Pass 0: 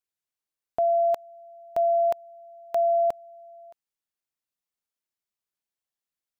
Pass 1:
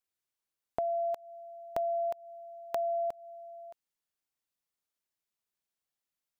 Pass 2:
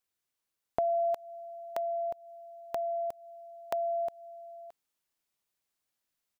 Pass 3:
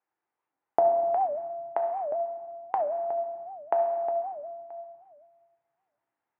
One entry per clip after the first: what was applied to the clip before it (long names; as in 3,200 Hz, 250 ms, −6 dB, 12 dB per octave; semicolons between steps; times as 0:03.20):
downward compressor 10 to 1, threshold −30 dBFS, peak gain reduction 10 dB
single-tap delay 980 ms −3 dB; level +3 dB
loudspeaker in its box 190–2,000 Hz, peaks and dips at 200 Hz −8 dB, 340 Hz +4 dB, 850 Hz +10 dB; on a send at −3 dB: convolution reverb RT60 1.6 s, pre-delay 9 ms; on the sum: wow of a warped record 78 rpm, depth 250 cents; level +4 dB